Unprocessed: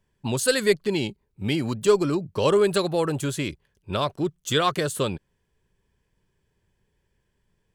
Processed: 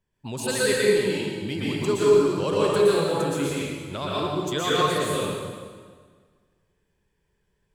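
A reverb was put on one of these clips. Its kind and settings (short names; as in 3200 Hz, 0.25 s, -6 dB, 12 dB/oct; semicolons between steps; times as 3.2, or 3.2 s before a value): plate-style reverb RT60 1.7 s, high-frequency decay 0.85×, pre-delay 0.105 s, DRR -7.5 dB; gain -7.5 dB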